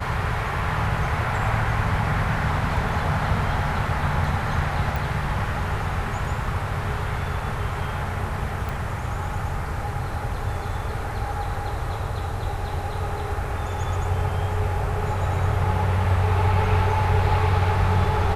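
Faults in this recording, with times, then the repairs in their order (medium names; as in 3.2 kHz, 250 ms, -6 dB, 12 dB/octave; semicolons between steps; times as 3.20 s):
4.96 s: pop
8.69 s: pop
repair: de-click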